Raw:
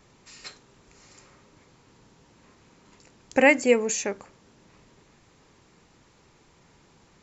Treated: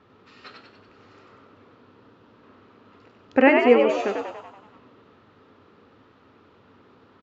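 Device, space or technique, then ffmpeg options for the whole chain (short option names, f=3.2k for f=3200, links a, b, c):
frequency-shifting delay pedal into a guitar cabinet: -filter_complex "[0:a]asplit=9[a][b][c][d][e][f][g][h][i];[b]adelay=95,afreqshift=75,volume=-4dB[j];[c]adelay=190,afreqshift=150,volume=-8.9dB[k];[d]adelay=285,afreqshift=225,volume=-13.8dB[l];[e]adelay=380,afreqshift=300,volume=-18.6dB[m];[f]adelay=475,afreqshift=375,volume=-23.5dB[n];[g]adelay=570,afreqshift=450,volume=-28.4dB[o];[h]adelay=665,afreqshift=525,volume=-33.3dB[p];[i]adelay=760,afreqshift=600,volume=-38.2dB[q];[a][j][k][l][m][n][o][p][q]amix=inputs=9:normalize=0,highpass=90,equalizer=f=98:t=q:w=4:g=7,equalizer=f=150:t=q:w=4:g=-7,equalizer=f=260:t=q:w=4:g=6,equalizer=f=440:t=q:w=4:g=5,equalizer=f=1.3k:t=q:w=4:g=8,equalizer=f=2.2k:t=q:w=4:g=-5,lowpass=f=3.6k:w=0.5412,lowpass=f=3.6k:w=1.3066"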